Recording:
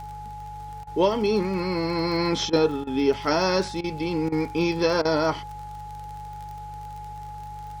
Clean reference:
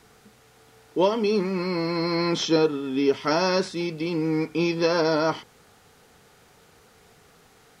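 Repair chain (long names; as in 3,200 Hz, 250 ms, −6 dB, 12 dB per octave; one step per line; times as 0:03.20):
click removal
hum removal 49.7 Hz, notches 3
notch filter 840 Hz, Q 30
repair the gap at 0:00.84/0:02.50/0:02.84/0:03.81/0:04.29/0:05.02, 29 ms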